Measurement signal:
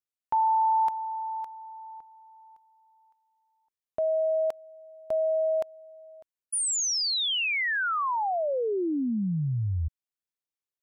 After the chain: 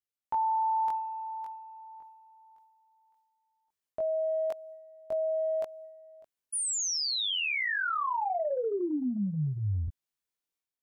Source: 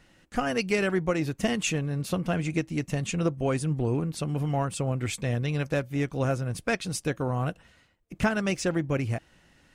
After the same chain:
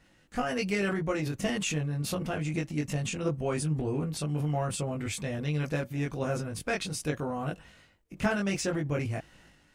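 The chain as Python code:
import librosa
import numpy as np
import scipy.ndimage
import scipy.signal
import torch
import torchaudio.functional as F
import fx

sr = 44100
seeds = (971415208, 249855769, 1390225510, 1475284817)

y = fx.doubler(x, sr, ms=20.0, db=-2.0)
y = fx.transient(y, sr, attack_db=1, sustain_db=7)
y = y * librosa.db_to_amplitude(-6.0)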